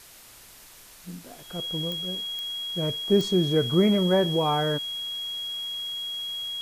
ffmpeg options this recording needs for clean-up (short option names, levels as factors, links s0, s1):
-af "adeclick=t=4,bandreject=f=3300:w=30,afwtdn=0.004"